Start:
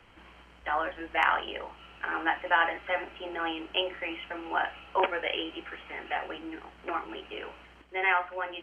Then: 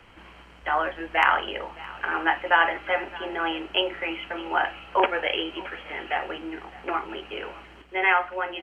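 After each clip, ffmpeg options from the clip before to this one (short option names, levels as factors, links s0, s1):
-af "aecho=1:1:616:0.1,volume=1.78"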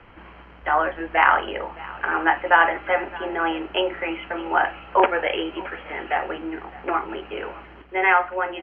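-af "lowpass=2100,volume=1.68"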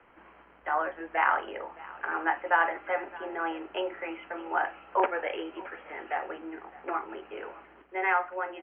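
-filter_complex "[0:a]acrossover=split=240 2900:gain=0.224 1 0.0631[s0][s1][s2];[s0][s1][s2]amix=inputs=3:normalize=0,volume=0.398"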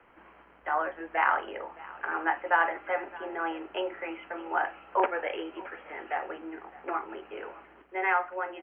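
-af "aeval=exprs='0.355*(cos(1*acos(clip(val(0)/0.355,-1,1)))-cos(1*PI/2))+0.00251*(cos(3*acos(clip(val(0)/0.355,-1,1)))-cos(3*PI/2))':c=same"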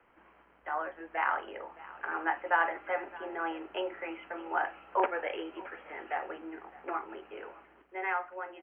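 -af "dynaudnorm=f=480:g=7:m=1.5,volume=0.501"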